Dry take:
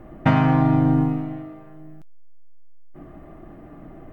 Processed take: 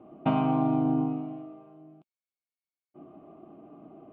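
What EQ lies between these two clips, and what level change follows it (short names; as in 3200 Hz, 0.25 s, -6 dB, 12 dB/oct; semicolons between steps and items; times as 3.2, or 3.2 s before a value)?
speaker cabinet 300–2700 Hz, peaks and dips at 320 Hz -3 dB, 530 Hz -9 dB, 910 Hz -7 dB, 1400 Hz -9 dB, 2000 Hz -8 dB; bell 1900 Hz -12.5 dB 0.53 oct; notch 1700 Hz, Q 6.1; 0.0 dB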